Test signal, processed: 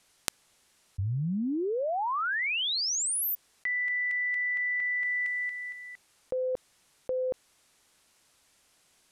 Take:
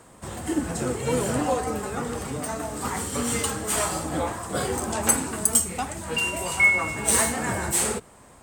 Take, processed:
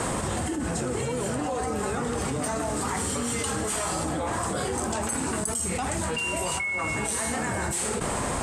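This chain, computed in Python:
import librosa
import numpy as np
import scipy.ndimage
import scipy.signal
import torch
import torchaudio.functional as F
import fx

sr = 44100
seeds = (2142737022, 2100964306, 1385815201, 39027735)

y = scipy.signal.sosfilt(scipy.signal.butter(4, 11000.0, 'lowpass', fs=sr, output='sos'), x)
y = fx.env_flatten(y, sr, amount_pct=100)
y = y * 10.0 ** (-14.0 / 20.0)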